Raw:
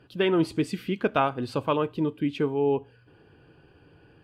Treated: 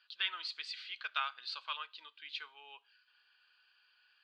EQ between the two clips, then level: Chebyshev high-pass 1300 Hz, order 3; ladder low-pass 4600 Hz, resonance 65%; high shelf 3500 Hz +6 dB; +2.5 dB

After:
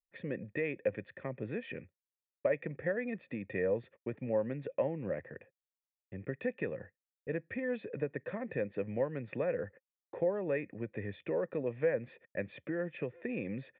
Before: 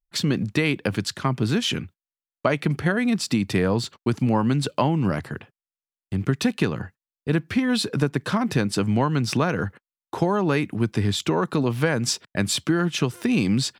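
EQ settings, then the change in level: vocal tract filter e; 0.0 dB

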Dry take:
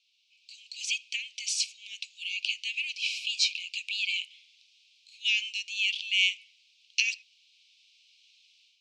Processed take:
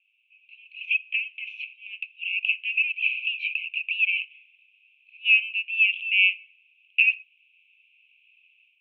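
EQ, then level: synth low-pass 2600 Hz, resonance Q 13; air absorption 330 m; fixed phaser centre 2000 Hz, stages 4; -4.0 dB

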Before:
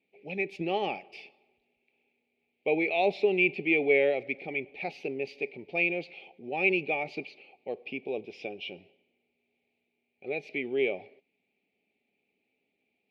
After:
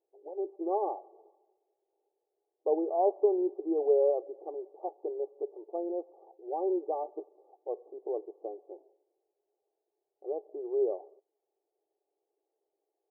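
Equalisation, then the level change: brick-wall FIR band-pass 310–1200 Hz; 0.0 dB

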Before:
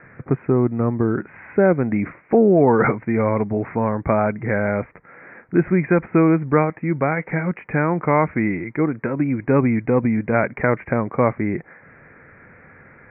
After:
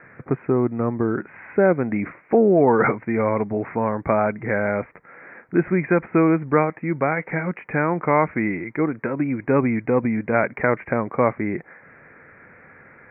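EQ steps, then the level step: low shelf 170 Hz -8 dB; 0.0 dB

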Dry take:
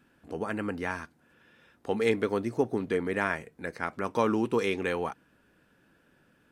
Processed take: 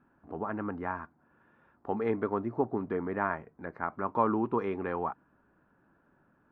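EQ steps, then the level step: synth low-pass 1100 Hz, resonance Q 1.8; bell 490 Hz -7 dB 0.23 oct; -2.5 dB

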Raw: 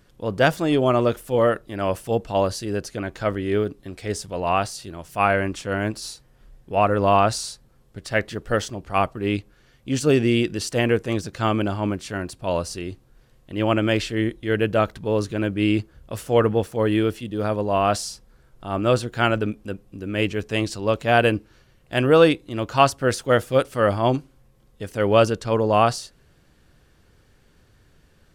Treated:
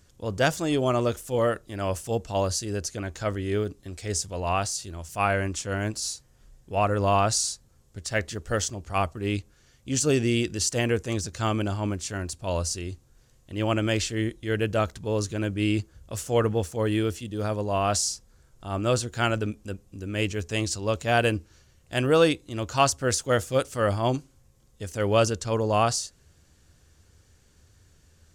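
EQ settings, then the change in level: bell 80 Hz +11.5 dB 0.59 oct; bell 6800 Hz +12.5 dB 1 oct; high shelf 11000 Hz +4.5 dB; -5.5 dB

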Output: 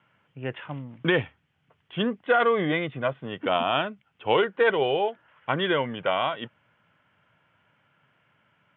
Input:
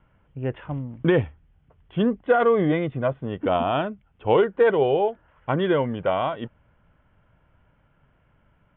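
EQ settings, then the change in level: HPF 110 Hz 24 dB/oct; air absorption 100 m; tilt shelf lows -9 dB, about 1400 Hz; +3.0 dB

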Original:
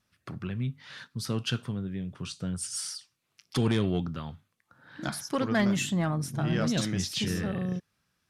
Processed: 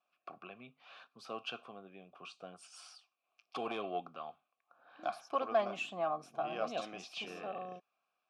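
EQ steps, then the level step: vowel filter a; HPF 240 Hz 12 dB/oct; +7.0 dB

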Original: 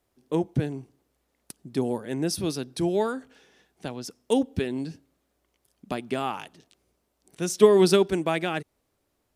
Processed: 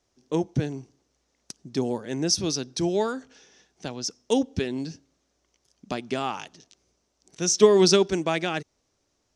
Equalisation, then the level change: synth low-pass 6000 Hz, resonance Q 4.1; 0.0 dB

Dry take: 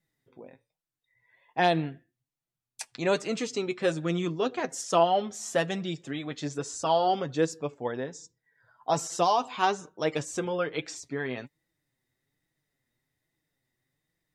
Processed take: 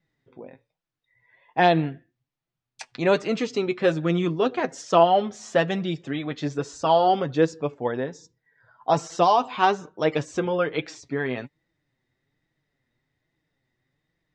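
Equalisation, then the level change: air absorption 140 m; +6.0 dB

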